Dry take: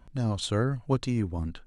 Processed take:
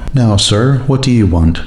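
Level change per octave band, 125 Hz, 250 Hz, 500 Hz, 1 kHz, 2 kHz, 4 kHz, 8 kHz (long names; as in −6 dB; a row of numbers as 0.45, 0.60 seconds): +18.5, +18.5, +15.5, +15.5, +17.0, +22.0, +21.5 decibels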